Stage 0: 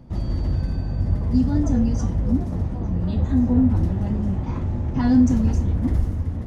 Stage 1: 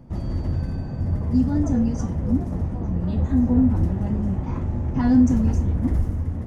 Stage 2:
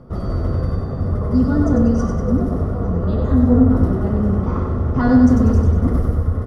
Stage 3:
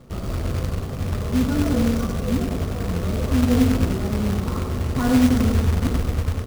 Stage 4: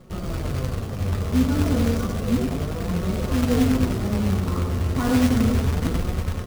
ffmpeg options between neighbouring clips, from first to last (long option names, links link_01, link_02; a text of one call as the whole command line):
ffmpeg -i in.wav -af "equalizer=frequency=3900:width=1.4:gain=-6,bandreject=frequency=50:width_type=h:width=6,bandreject=frequency=100:width_type=h:width=6" out.wav
ffmpeg -i in.wav -af "superequalizer=7b=2.82:8b=1.78:10b=3.55:12b=0.562:15b=0.447,aecho=1:1:96|192|288|384|480|576|672:0.596|0.304|0.155|0.079|0.0403|0.0206|0.0105,volume=3dB" out.wav
ffmpeg -i in.wav -af "acrusher=bits=3:mode=log:mix=0:aa=0.000001,volume=-5dB" out.wav
ffmpeg -i in.wav -af "flanger=delay=5.4:depth=6.1:regen=51:speed=0.32:shape=sinusoidal,volume=3.5dB" out.wav